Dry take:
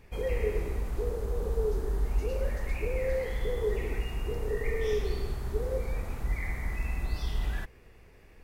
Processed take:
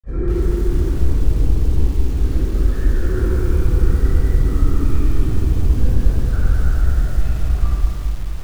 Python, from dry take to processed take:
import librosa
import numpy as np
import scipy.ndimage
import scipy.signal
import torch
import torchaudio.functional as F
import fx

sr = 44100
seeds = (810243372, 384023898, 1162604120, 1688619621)

p1 = fx.lowpass(x, sr, hz=1600.0, slope=6)
p2 = fx.low_shelf(p1, sr, hz=380.0, db=7.0)
p3 = fx.over_compress(p2, sr, threshold_db=-24.0, ratio=-0.5)
p4 = fx.wow_flutter(p3, sr, seeds[0], rate_hz=2.1, depth_cents=28.0)
p5 = fx.formant_shift(p4, sr, semitones=-6)
p6 = fx.granulator(p5, sr, seeds[1], grain_ms=100.0, per_s=20.0, spray_ms=100.0, spread_st=0)
p7 = p6 + fx.room_early_taps(p6, sr, ms=(29, 46), db=(-14.5, -16.0), dry=0)
p8 = fx.room_shoebox(p7, sr, seeds[2], volume_m3=3600.0, walls='mixed', distance_m=6.1)
p9 = fx.echo_crushed(p8, sr, ms=214, feedback_pct=55, bits=6, wet_db=-4.5)
y = p9 * 10.0 ** (-1.5 / 20.0)